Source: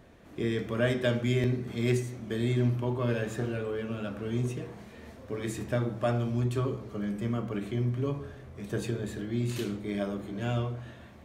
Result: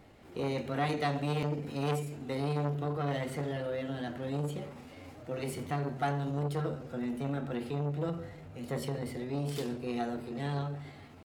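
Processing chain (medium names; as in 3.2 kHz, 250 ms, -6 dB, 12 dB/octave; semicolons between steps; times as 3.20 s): pitch shift +3 st; transformer saturation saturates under 710 Hz; trim -1.5 dB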